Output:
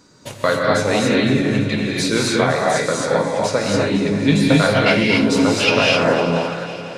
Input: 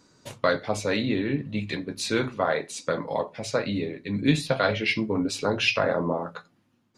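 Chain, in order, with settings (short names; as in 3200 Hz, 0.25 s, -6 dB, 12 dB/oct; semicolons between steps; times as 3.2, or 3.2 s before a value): in parallel at -3 dB: compressor, threshold -31 dBFS, peak gain reduction 15 dB; on the sum: multi-head echo 0.169 s, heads second and third, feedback 55%, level -15 dB; non-linear reverb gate 0.29 s rising, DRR -2.5 dB; gain +3 dB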